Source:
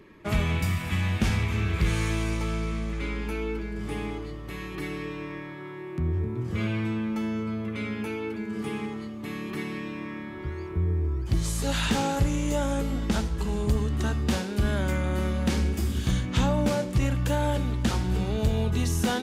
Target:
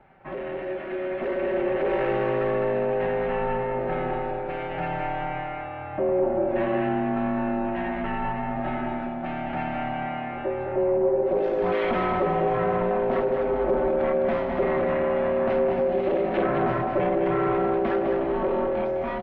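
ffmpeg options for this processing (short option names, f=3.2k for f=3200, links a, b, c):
-filter_complex "[0:a]acrusher=bits=8:mix=0:aa=0.5,aresample=16000,asoftclip=type=tanh:threshold=-27dB,aresample=44100,aeval=exprs='val(0)*sin(2*PI*460*n/s)':c=same,lowpass=f=2.2k:w=0.5412,lowpass=f=2.2k:w=1.3066,lowshelf=f=330:g=-4,aecho=1:1:5.3:0.5,asplit=2[a][b];[b]aecho=0:1:208|416|624|832:0.531|0.159|0.0478|0.0143[c];[a][c]amix=inputs=2:normalize=0,dynaudnorm=f=280:g=11:m=9dB"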